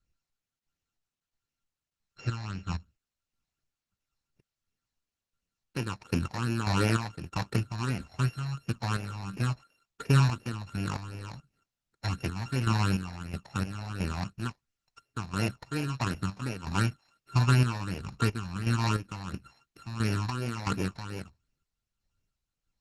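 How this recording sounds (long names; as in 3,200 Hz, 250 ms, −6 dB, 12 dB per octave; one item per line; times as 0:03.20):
a buzz of ramps at a fixed pitch in blocks of 32 samples
chopped level 1.5 Hz, depth 60%, duty 45%
phaser sweep stages 8, 2.8 Hz, lowest notch 380–1,200 Hz
Opus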